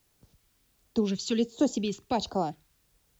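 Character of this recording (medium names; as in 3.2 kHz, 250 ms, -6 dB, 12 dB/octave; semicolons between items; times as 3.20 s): phasing stages 2, 1.4 Hz, lowest notch 610–2300 Hz; a quantiser's noise floor 12-bit, dither triangular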